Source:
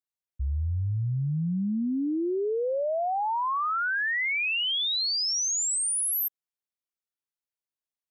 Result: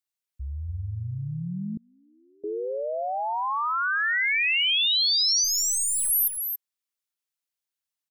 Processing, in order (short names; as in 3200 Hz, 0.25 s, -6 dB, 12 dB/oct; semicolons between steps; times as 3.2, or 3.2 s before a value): 5.44–6.1 half-wave gain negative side -12 dB; tilt shelf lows -5 dB, about 1100 Hz; echo 0.277 s -7 dB; 1.77–2.44 flipped gate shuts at -35 dBFS, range -29 dB